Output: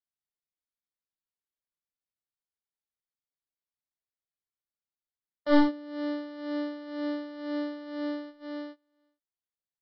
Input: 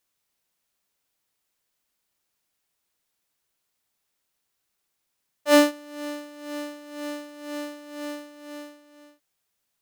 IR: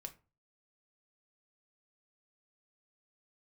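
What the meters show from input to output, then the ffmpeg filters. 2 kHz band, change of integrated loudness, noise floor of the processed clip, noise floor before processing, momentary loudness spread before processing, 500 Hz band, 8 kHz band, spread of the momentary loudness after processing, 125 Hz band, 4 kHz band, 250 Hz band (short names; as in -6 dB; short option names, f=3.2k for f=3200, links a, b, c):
-7.5 dB, -4.0 dB, under -85 dBFS, -78 dBFS, 22 LU, -6.5 dB, under -30 dB, 16 LU, n/a, -10.0 dB, 0.0 dB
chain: -filter_complex "[0:a]agate=range=-24dB:threshold=-44dB:ratio=16:detection=peak,lowshelf=f=180:g=8,acrossover=split=500[a][b];[b]acompressor=threshold=-48dB:ratio=1.5[c];[a][c]amix=inputs=2:normalize=0,aresample=11025,aeval=exprs='clip(val(0),-1,0.0501)':c=same,aresample=44100,asuperstop=centerf=2600:order=8:qfactor=4.2,volume=1.5dB"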